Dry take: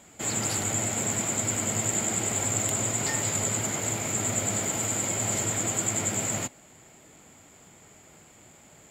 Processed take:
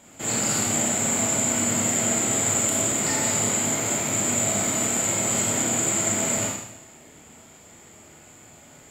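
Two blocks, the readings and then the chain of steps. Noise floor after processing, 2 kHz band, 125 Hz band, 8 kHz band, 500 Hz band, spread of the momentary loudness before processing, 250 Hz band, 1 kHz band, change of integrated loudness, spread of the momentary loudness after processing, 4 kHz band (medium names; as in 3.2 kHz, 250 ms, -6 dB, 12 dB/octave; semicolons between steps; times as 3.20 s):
-49 dBFS, +4.5 dB, +0.5 dB, +5.0 dB, +5.0 dB, 2 LU, +6.0 dB, +4.5 dB, +5.0 dB, 3 LU, +5.0 dB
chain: Schroeder reverb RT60 0.86 s, combs from 26 ms, DRR -3 dB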